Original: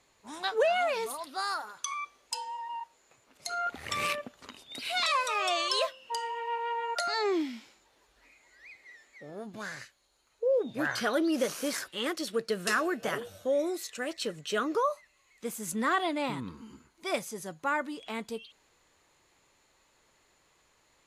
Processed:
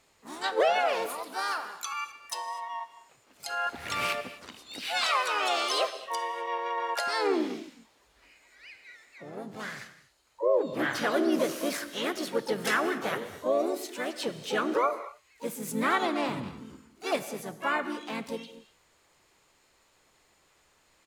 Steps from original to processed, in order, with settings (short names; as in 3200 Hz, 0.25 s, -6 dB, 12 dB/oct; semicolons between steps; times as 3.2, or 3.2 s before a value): dynamic EQ 6800 Hz, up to -4 dB, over -50 dBFS, Q 0.85; non-linear reverb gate 0.28 s flat, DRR 11 dB; harmoniser -5 st -11 dB, +3 st -5 dB, +12 st -13 dB